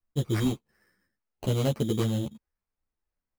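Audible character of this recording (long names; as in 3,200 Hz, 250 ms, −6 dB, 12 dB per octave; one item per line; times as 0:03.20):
phaser sweep stages 6, 0.74 Hz, lowest notch 750–2,100 Hz
aliases and images of a low sample rate 3,500 Hz, jitter 0%
a shimmering, thickened sound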